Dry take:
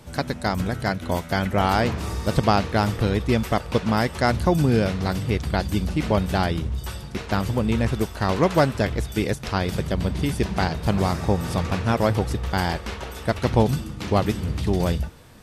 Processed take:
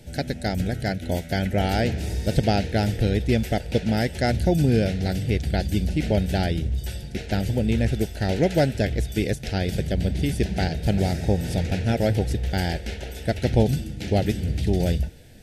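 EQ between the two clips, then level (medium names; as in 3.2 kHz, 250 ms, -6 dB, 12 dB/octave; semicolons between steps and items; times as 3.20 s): Butterworth band-stop 1.1 kHz, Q 1.3; bass shelf 67 Hz +6 dB; -1.0 dB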